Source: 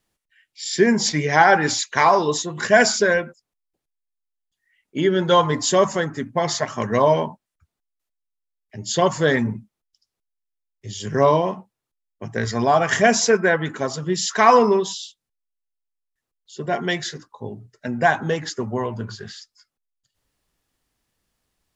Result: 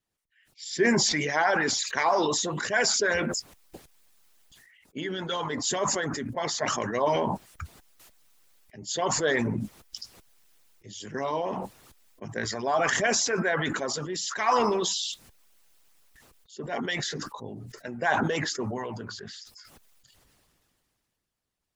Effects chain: harmonic-percussive split harmonic -15 dB; sustainer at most 21 dB/s; gain -6 dB

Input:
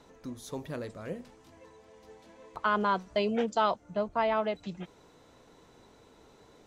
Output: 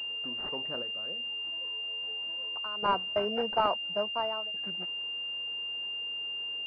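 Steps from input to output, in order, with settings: HPF 870 Hz 6 dB/oct; 0.82–2.83 compressor 2:1, threshold -54 dBFS, peak gain reduction 15.5 dB; 3.99–4.54 fade out; pulse-width modulation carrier 2800 Hz; gain +5 dB

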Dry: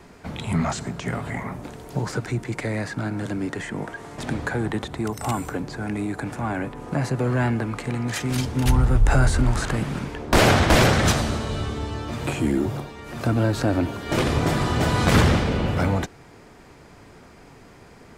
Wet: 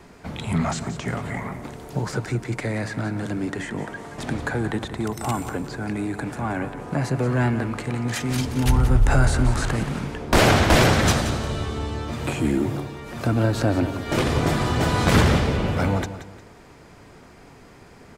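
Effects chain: feedback echo 0.177 s, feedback 33%, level -12 dB

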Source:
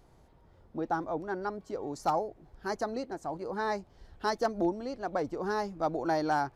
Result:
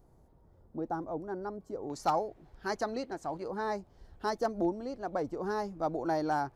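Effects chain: bell 2900 Hz -14 dB 2.3 oct, from 1.9 s +3.5 dB, from 3.48 s -5 dB; gain -1 dB

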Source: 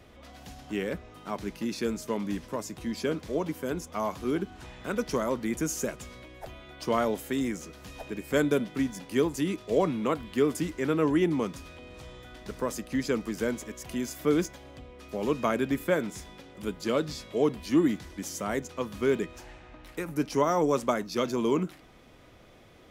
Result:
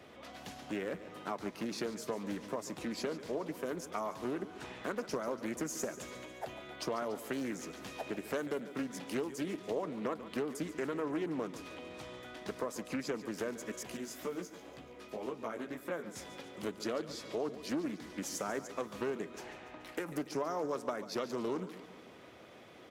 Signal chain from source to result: HPF 130 Hz 12 dB/oct; tone controls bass -4 dB, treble -3 dB; harmonic-percussive split harmonic -3 dB; dynamic EQ 2800 Hz, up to -4 dB, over -50 dBFS, Q 1.8; compressor 4:1, threshold -38 dBFS, peak gain reduction 15.5 dB; 13.83–16.16 chorus 2 Hz, delay 15 ms, depth 4.6 ms; feedback echo 0.143 s, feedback 59%, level -14 dB; Doppler distortion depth 0.31 ms; gain +3 dB

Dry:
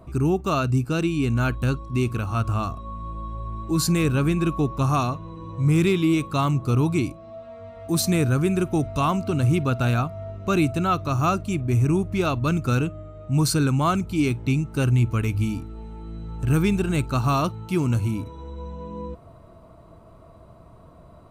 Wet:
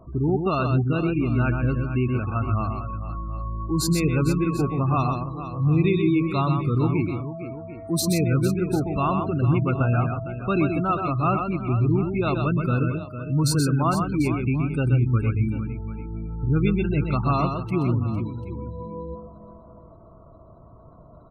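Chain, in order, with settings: spectral gate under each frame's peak -25 dB strong; tapped delay 0.127/0.135/0.456/0.742 s -5.5/-19/-11.5/-16 dB; gain -1.5 dB

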